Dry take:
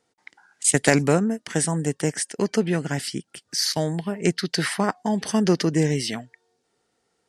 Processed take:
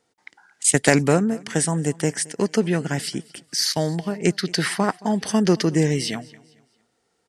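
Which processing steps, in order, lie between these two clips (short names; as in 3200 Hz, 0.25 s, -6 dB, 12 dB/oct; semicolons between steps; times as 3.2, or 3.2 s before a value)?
feedback echo 0.222 s, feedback 38%, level -23 dB; gain +1.5 dB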